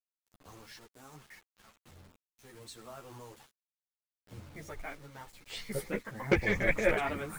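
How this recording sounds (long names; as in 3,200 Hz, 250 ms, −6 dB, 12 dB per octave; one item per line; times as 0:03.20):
tremolo triangle 0.73 Hz, depth 50%
a quantiser's noise floor 10 bits, dither none
a shimmering, thickened sound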